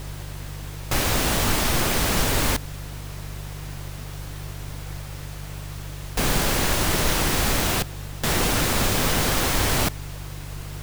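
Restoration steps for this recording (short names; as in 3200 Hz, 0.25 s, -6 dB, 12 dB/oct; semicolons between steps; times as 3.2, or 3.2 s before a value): de-hum 49.3 Hz, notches 3; noise print and reduce 30 dB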